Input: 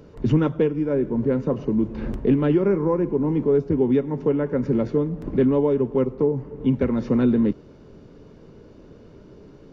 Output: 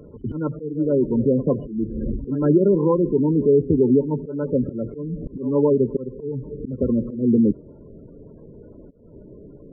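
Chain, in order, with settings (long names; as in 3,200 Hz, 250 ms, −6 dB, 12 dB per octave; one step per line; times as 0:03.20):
gate on every frequency bin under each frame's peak −20 dB strong
volume swells 253 ms
backwards echo 104 ms −16.5 dB
level +3 dB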